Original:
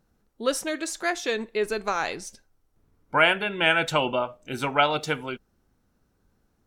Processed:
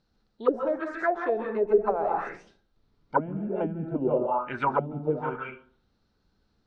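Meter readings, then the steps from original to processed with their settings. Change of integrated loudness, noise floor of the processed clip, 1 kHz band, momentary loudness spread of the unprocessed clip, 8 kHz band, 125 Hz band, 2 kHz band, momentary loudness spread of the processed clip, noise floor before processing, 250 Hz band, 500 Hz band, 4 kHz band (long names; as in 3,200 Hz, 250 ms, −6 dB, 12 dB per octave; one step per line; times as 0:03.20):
−3.0 dB, −72 dBFS, −1.5 dB, 11 LU, below −30 dB, +1.5 dB, −11.5 dB, 8 LU, −70 dBFS, +1.0 dB, +1.5 dB, below −25 dB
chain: dense smooth reverb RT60 0.51 s, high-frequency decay 0.5×, pre-delay 115 ms, DRR 3 dB
envelope-controlled low-pass 220–4,400 Hz down, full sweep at −17 dBFS
level −4.5 dB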